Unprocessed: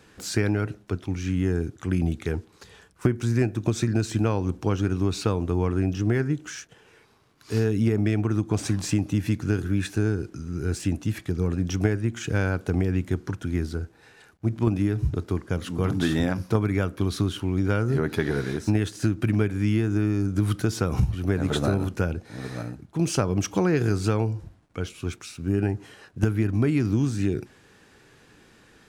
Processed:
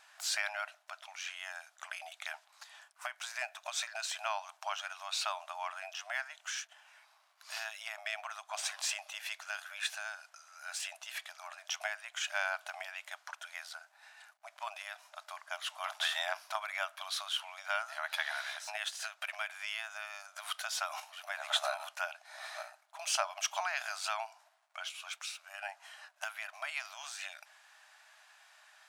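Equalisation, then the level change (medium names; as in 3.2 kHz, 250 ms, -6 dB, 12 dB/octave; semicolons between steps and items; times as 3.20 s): dynamic bell 3.2 kHz, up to +6 dB, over -51 dBFS, Q 1.7; brick-wall FIR high-pass 590 Hz; -3.0 dB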